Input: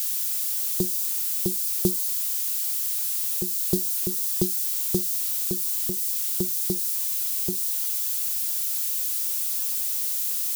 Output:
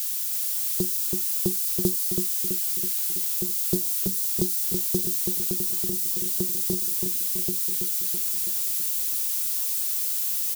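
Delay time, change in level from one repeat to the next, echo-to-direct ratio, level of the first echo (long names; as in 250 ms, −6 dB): 328 ms, −4.5 dB, −3.0 dB, −5.0 dB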